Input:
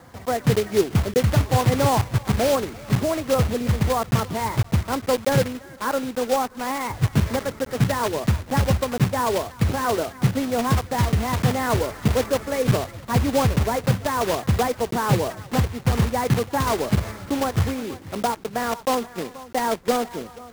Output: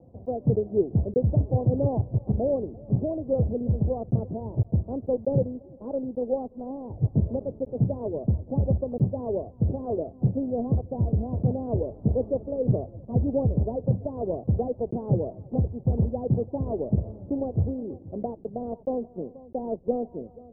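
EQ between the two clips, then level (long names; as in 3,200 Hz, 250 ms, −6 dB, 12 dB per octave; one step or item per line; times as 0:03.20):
Butterworth low-pass 650 Hz 36 dB per octave
high-frequency loss of the air 250 metres
−3.0 dB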